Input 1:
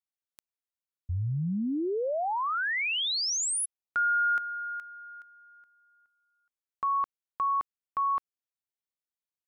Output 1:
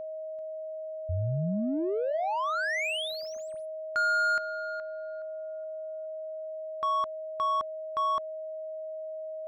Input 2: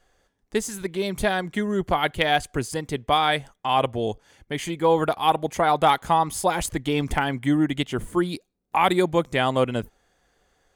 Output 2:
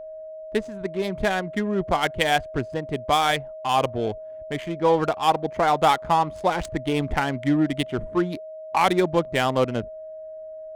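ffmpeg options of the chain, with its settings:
-af "adynamicsmooth=sensitivity=3.5:basefreq=940,aeval=exprs='val(0)+0.0178*sin(2*PI*630*n/s)':c=same"

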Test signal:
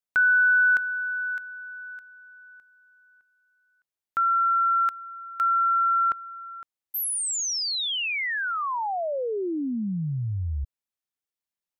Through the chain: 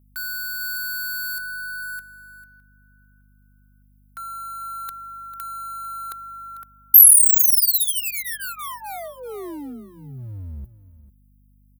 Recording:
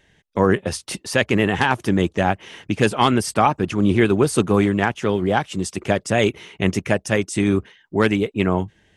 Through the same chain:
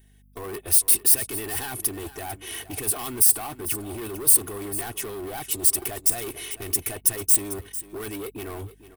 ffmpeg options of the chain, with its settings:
-af "agate=range=0.224:threshold=0.00316:ratio=16:release=28:detection=peak,alimiter=limit=0.224:level=0:latency=1:release=330,areverse,acompressor=threshold=0.0224:ratio=20:attack=6.6:release=22:knee=1:detection=peak,areverse,aecho=1:1:2.7:0.94,volume=37.6,asoftclip=hard,volume=0.0266,bass=f=250:g=0,treble=f=4000:g=8,aecho=1:1:447:0.178,aeval=exprs='val(0)+0.00178*(sin(2*PI*50*n/s)+sin(2*PI*2*50*n/s)/2+sin(2*PI*3*50*n/s)/3+sin(2*PI*4*50*n/s)/4+sin(2*PI*5*50*n/s)/5)':c=same,aexciter=amount=9.4:drive=6.1:freq=9400"

